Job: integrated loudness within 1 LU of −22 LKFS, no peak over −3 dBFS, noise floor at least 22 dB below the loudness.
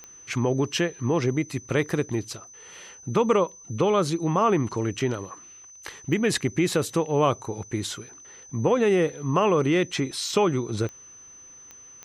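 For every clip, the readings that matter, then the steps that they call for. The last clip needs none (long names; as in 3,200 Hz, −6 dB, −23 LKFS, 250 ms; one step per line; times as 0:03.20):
number of clicks 5; interfering tone 6,100 Hz; level of the tone −45 dBFS; integrated loudness −25.0 LKFS; sample peak −9.0 dBFS; target loudness −22.0 LKFS
→ click removal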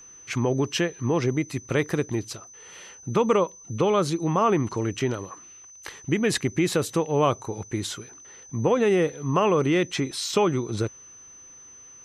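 number of clicks 0; interfering tone 6,100 Hz; level of the tone −45 dBFS
→ notch filter 6,100 Hz, Q 30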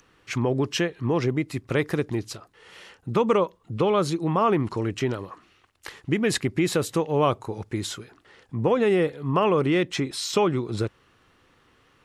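interfering tone none found; integrated loudness −25.0 LKFS; sample peak −9.0 dBFS; target loudness −22.0 LKFS
→ level +3 dB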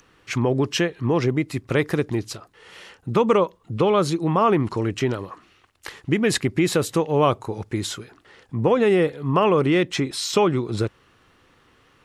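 integrated loudness −22.0 LKFS; sample peak −6.0 dBFS; background noise floor −58 dBFS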